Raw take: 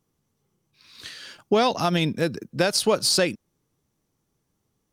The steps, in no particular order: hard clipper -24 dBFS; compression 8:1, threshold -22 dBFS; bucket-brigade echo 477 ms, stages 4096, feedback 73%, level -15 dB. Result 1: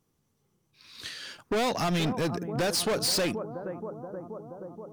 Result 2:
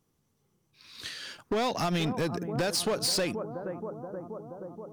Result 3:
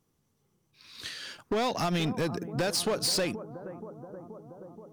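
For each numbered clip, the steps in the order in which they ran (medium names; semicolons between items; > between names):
bucket-brigade echo > hard clipper > compression; bucket-brigade echo > compression > hard clipper; compression > bucket-brigade echo > hard clipper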